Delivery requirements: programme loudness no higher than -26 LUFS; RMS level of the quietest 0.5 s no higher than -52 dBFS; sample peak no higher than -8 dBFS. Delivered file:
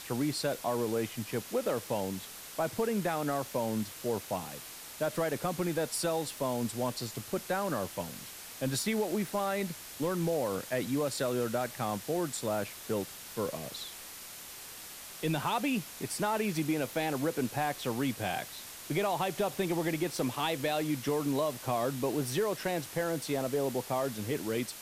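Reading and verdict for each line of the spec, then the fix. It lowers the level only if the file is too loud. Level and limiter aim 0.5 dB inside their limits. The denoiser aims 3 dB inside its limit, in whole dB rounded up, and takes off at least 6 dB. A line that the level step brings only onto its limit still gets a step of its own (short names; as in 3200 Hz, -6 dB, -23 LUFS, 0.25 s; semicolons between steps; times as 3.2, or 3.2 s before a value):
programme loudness -33.0 LUFS: OK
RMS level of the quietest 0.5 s -46 dBFS: fail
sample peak -19.0 dBFS: OK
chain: denoiser 9 dB, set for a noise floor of -46 dBFS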